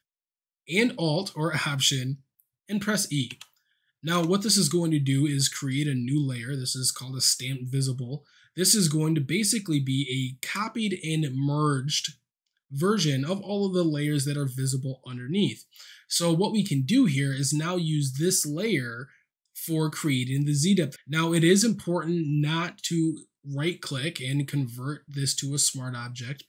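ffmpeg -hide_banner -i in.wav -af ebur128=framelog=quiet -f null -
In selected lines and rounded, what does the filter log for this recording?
Integrated loudness:
  I:         -25.8 LUFS
  Threshold: -36.2 LUFS
Loudness range:
  LRA:         3.3 LU
  Threshold: -46.2 LUFS
  LRA low:   -28.1 LUFS
  LRA high:  -24.7 LUFS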